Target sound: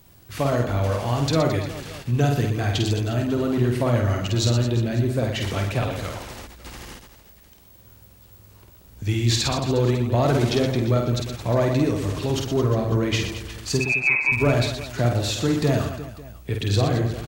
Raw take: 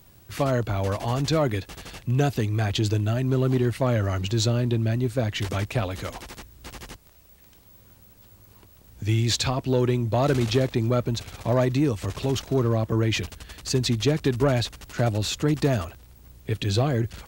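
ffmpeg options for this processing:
-filter_complex "[0:a]asettb=1/sr,asplit=3[a][b][c];[a]atrim=end=13.804[d];[b]atrim=start=13.8:end=14.32,asetpts=PTS-STARTPTS,afade=t=in:d=0.004:c=qsin,afade=t=out:st=0.516:d=0.004:c=qsin,lowpass=f=2.3k:t=q:w=0.5098,lowpass=f=2.3k:t=q:w=0.6013,lowpass=f=2.3k:t=q:w=0.9,lowpass=f=2.3k:t=q:w=2.563,afreqshift=-2700[e];[c]atrim=start=14.316[f];[d][e]acrossfade=d=0.004:c1=hsin:c2=qsin[g];[g][f]acrossfade=d=0.004:c1=qsin:c2=hsin,asplit=2[h][i];[i]aecho=0:1:50|120|218|355.2|547.3:0.631|0.398|0.251|0.158|0.1[j];[h][j]amix=inputs=2:normalize=0"

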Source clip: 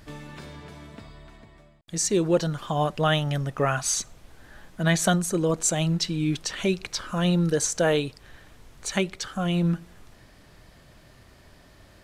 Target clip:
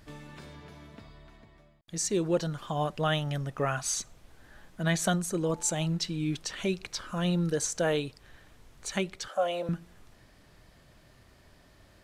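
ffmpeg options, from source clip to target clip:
-filter_complex "[0:a]asettb=1/sr,asplit=3[a][b][c];[a]atrim=end=0.544[d];[b]atrim=start=0.54:end=1.98,asetpts=PTS-STARTPTS,afade=t=in:d=0.004:c=qsin,afade=t=out:st=1.436:d=0.004:c=qsin,equalizer=f=8.2k:w=7.3:g=-11.5[e];[c]atrim=start=1.976[f];[d][e]acrossfade=d=0.004:c1=hsin:c2=qsin[g];[g][f]acrossfade=d=0.004:c1=qsin:c2=hsin,asettb=1/sr,asplit=3[h][i][j];[h]atrim=end=5.444[k];[i]atrim=start=5.44:end=5.86,asetpts=PTS-STARTPTS,afade=t=in:d=0.004:c=qsin,afade=t=out:st=0.416:d=0.004:c=qsin,aeval=exprs='val(0)+0.00708*sin(2*PI*870*n/s)':c=same[l];[j]atrim=start=5.856[m];[k][l]acrossfade=d=0.004:c1=hsin:c2=qsin[n];[n][m]acrossfade=d=0.004:c1=qsin:c2=hsin,asettb=1/sr,asplit=3[o][p][q];[o]atrim=end=9.294[r];[p]atrim=start=9.29:end=9.69,asetpts=PTS-STARTPTS,afade=t=in:d=0.004:c=qsin,afade=t=out:st=0.396:d=0.004:c=qsin,highpass=f=580:t=q:w=7.2[s];[q]atrim=start=9.686[t];[r][s]acrossfade=d=0.004:c1=hsin:c2=qsin[u];[u][t]acrossfade=d=0.004:c1=qsin:c2=hsin,volume=-5.5dB"

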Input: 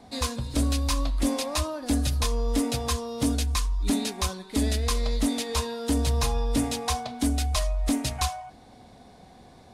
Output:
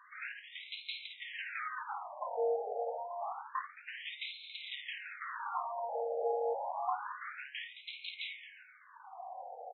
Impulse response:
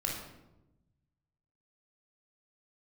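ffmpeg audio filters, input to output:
-filter_complex "[0:a]highpass=98,highshelf=f=2.3k:g=-10,bandreject=f=410:w=12,asoftclip=type=tanh:threshold=-37dB,asettb=1/sr,asplit=3[a][b][c];[a]atrim=end=5.294[d];[b]atrim=start=5.29:end=5.82,asetpts=PTS-STARTPTS,afade=t=in:d=0.004:c=qsin,afade=t=out:st=0.526:d=0.004:c=qsin,aeval=exprs='0.0141*(cos(1*acos(clip(val(0)/0.0141,-1,1)))-cos(1*PI/2))+0.00631*(cos(4*acos(clip(val(0)/0.0141,-1,1)))-cos(4*PI/2))':c=same[e];[c]atrim=start=5.816[f];[d][e]acrossfade=d=0.004:c1=hsin:c2=qsin[g];[g][f]acrossfade=d=0.004:c1=qsin:c2=hsin,aecho=1:1:52|140|219|353:0.447|0.141|0.237|0.119,afftfilt=real='re*between(b*sr/1024,600*pow(3000/600,0.5+0.5*sin(2*PI*0.28*pts/sr))/1.41,600*pow(3000/600,0.5+0.5*sin(2*PI*0.28*pts/sr))*1.41)':imag='im*between(b*sr/1024,600*pow(3000/600,0.5+0.5*sin(2*PI*0.28*pts/sr))/1.41,600*pow(3000/600,0.5+0.5*sin(2*PI*0.28*pts/sr))*1.41)':win_size=1024:overlap=0.75,volume=9.5dB"

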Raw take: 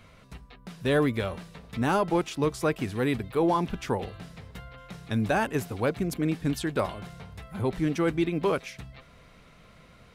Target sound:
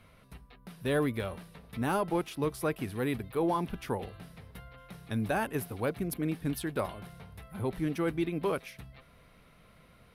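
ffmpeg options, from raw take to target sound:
-af "adynamicsmooth=sensitivity=0.5:basefreq=7.9k,aexciter=amount=11.1:drive=6.3:freq=10k,volume=-5dB"

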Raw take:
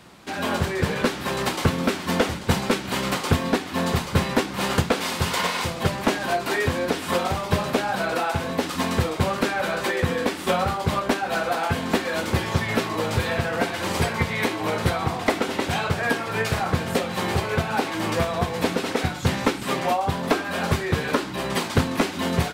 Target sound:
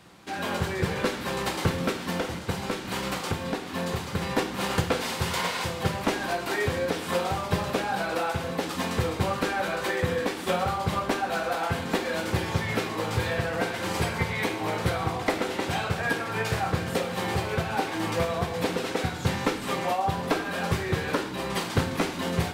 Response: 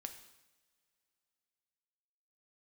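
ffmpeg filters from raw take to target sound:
-filter_complex "[0:a]asplit=3[a][b][c];[a]afade=t=out:st=1.91:d=0.02[d];[b]acompressor=threshold=-21dB:ratio=6,afade=t=in:st=1.91:d=0.02,afade=t=out:st=4.21:d=0.02[e];[c]afade=t=in:st=4.21:d=0.02[f];[d][e][f]amix=inputs=3:normalize=0[g];[1:a]atrim=start_sample=2205[h];[g][h]afir=irnorm=-1:irlink=0"

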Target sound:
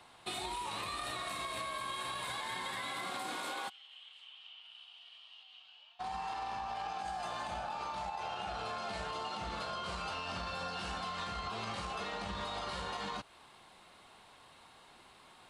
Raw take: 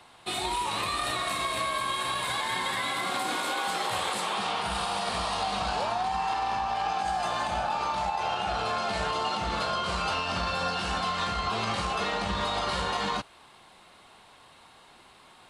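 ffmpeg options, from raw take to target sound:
-filter_complex "[0:a]acompressor=threshold=-32dB:ratio=6,asplit=3[a][b][c];[a]afade=t=out:st=3.68:d=0.02[d];[b]bandpass=f=3k:t=q:w=13:csg=0,afade=t=in:st=3.68:d=0.02,afade=t=out:st=5.99:d=0.02[e];[c]afade=t=in:st=5.99:d=0.02[f];[d][e][f]amix=inputs=3:normalize=0,volume=-4.5dB"

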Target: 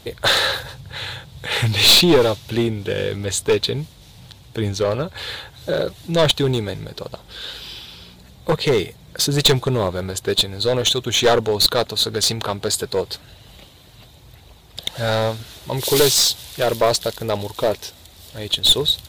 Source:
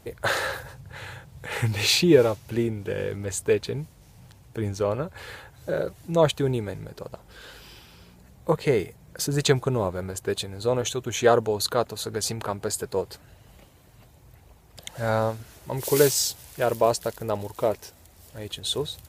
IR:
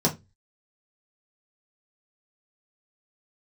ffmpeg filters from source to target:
-af "equalizer=f=3.7k:w=2:g=14,aeval=exprs='clip(val(0),-1,0.119)':c=same,acontrast=82,volume=-1dB"

